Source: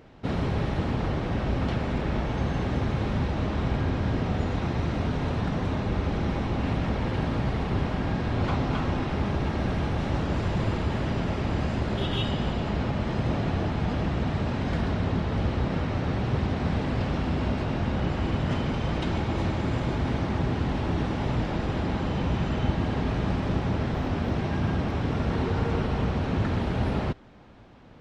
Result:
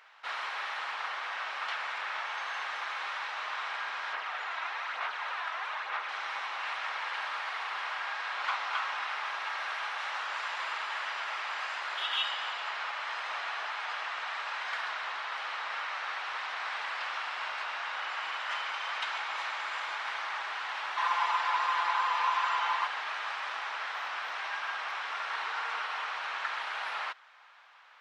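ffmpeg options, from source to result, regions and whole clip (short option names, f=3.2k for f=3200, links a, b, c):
-filter_complex "[0:a]asettb=1/sr,asplit=3[a][b][c];[a]atrim=end=4.134[d];[b]atrim=start=4.13:end=6.09,asetpts=PTS-STARTPTS,afade=t=in:d=0.004:c=qsin,afade=t=out:st=1.956:d=0.004:c=qsin,bass=f=250:g=-10,treble=f=4k:g=-7,aphaser=in_gain=1:out_gain=1:delay=3.1:decay=0.38:speed=1.1:type=sinusoidal[e];[c]atrim=start=6.086[f];[d][e]acrossfade=d=0.004:c1=hsin:c2=qsin[g];[g][f]acrossfade=d=0.004:c1=qsin:c2=hsin,asettb=1/sr,asplit=3[h][i][j];[h]atrim=end=20.974[k];[i]atrim=start=20.97:end=22.87,asetpts=PTS-STARTPTS,afade=t=in:d=0.004:c=qsin,afade=t=out:st=1.896:d=0.004:c=qsin,equalizer=f=1k:w=4.9:g=13,aecho=1:1:5.8:0.85,atrim=end_sample=83790[l];[j]atrim=start=22.866[m];[k][l]acrossfade=d=0.004:c1=hsin:c2=qsin[n];[n][m]acrossfade=d=0.004:c1=qsin:c2=hsin,highpass=f=1.1k:w=0.5412,highpass=f=1.1k:w=1.3066,highshelf=f=3.7k:g=-9.5,volume=6.5dB"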